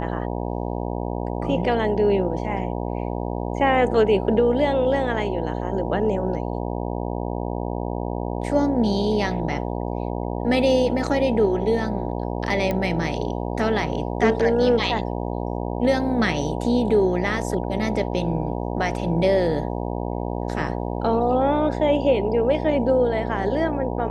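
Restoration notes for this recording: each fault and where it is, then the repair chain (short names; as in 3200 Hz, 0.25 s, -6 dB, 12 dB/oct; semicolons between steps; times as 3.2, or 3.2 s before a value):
buzz 60 Hz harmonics 16 -27 dBFS
12.71 pop -12 dBFS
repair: de-click; de-hum 60 Hz, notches 16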